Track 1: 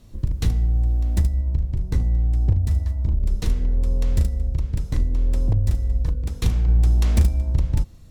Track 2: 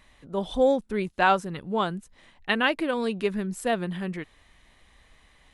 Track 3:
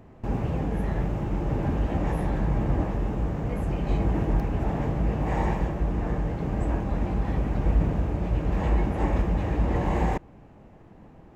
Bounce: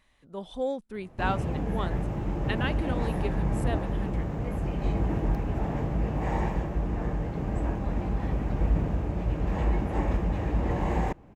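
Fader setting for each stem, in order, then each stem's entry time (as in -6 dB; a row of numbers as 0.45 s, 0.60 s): mute, -9.0 dB, -2.5 dB; mute, 0.00 s, 0.95 s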